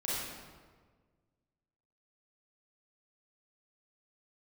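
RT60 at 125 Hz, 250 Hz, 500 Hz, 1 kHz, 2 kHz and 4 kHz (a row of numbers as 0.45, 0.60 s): 2.1, 1.8, 1.7, 1.4, 1.2, 1.0 s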